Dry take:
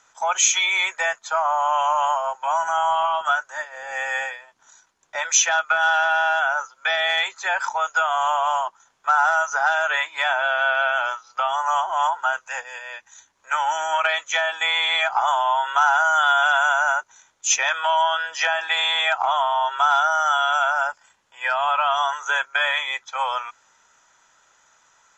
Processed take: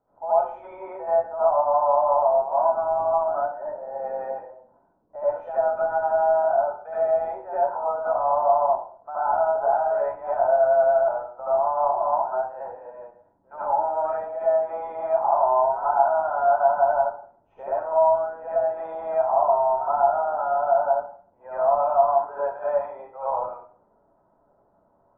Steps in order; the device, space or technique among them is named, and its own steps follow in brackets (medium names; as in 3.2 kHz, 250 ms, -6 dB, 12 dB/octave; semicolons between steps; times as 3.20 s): next room (low-pass 650 Hz 24 dB/octave; reverberation RT60 0.50 s, pre-delay 68 ms, DRR -10.5 dB); 17.70–18.63 s: distance through air 210 m; trim -2 dB